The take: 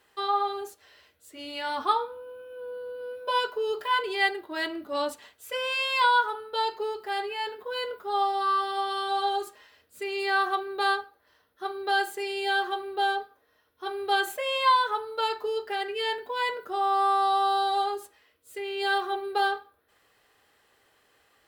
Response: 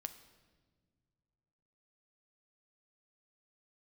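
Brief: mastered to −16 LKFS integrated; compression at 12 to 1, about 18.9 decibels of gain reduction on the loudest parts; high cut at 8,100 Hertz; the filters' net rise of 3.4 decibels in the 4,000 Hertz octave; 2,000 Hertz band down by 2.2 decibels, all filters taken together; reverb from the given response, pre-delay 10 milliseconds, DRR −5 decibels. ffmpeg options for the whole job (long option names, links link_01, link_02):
-filter_complex "[0:a]lowpass=8100,equalizer=frequency=2000:width_type=o:gain=-4.5,equalizer=frequency=4000:width_type=o:gain=6,acompressor=threshold=-37dB:ratio=12,asplit=2[link_01][link_02];[1:a]atrim=start_sample=2205,adelay=10[link_03];[link_02][link_03]afir=irnorm=-1:irlink=0,volume=8dB[link_04];[link_01][link_04]amix=inputs=2:normalize=0,volume=18dB"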